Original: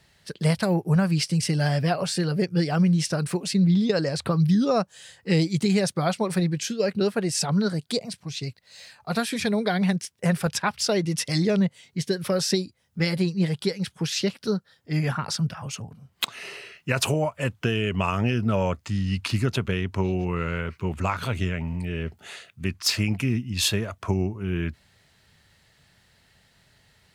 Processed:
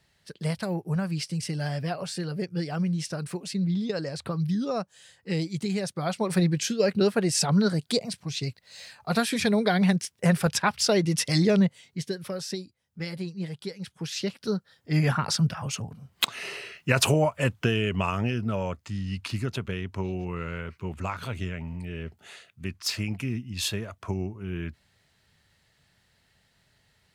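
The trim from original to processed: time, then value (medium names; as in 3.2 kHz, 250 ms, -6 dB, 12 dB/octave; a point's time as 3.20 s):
5.94 s -7 dB
6.40 s +1 dB
11.60 s +1 dB
12.38 s -10 dB
13.68 s -10 dB
15.03 s +2 dB
17.39 s +2 dB
18.63 s -6 dB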